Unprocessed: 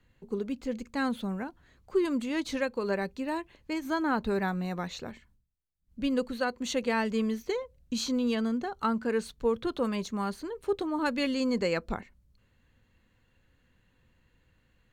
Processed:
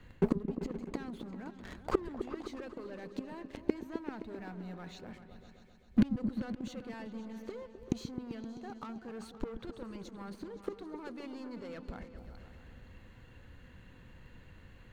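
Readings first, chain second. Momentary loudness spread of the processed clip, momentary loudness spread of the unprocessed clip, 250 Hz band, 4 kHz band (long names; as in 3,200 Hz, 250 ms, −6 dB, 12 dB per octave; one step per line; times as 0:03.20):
22 LU, 8 LU, −6.5 dB, −15.0 dB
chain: leveller curve on the samples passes 3
reversed playback
downward compressor 5 to 1, threshold −34 dBFS, peak gain reduction 13.5 dB
reversed playback
gate with flip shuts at −32 dBFS, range −29 dB
high-shelf EQ 3,700 Hz −7.5 dB
echo whose low-pass opens from repeat to repeat 130 ms, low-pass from 200 Hz, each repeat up 2 octaves, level −6 dB
level +17.5 dB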